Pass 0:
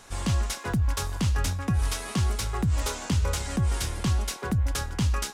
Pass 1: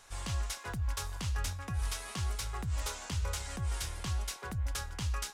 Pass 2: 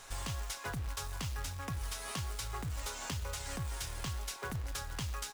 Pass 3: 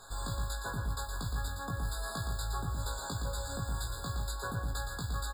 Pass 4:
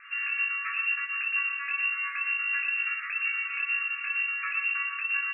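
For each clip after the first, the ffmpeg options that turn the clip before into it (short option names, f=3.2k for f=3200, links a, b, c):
-af "equalizer=f=230:t=o:w=2:g=-10.5,volume=-6.5dB"
-af "aecho=1:1:7.4:0.32,acrusher=bits=3:mode=log:mix=0:aa=0.000001,acompressor=threshold=-41dB:ratio=6,volume=5dB"
-filter_complex "[0:a]asplit=2[a][b];[b]adelay=18,volume=-3.5dB[c];[a][c]amix=inputs=2:normalize=0,asplit=2[d][e];[e]aecho=0:1:116.6|154.5:0.501|0.251[f];[d][f]amix=inputs=2:normalize=0,afftfilt=real='re*eq(mod(floor(b*sr/1024/1700),2),0)':imag='im*eq(mod(floor(b*sr/1024/1700),2),0)':win_size=1024:overlap=0.75"
-af "lowpass=f=2.4k:t=q:w=0.5098,lowpass=f=2.4k:t=q:w=0.6013,lowpass=f=2.4k:t=q:w=0.9,lowpass=f=2.4k:t=q:w=2.563,afreqshift=-2800,volume=5.5dB"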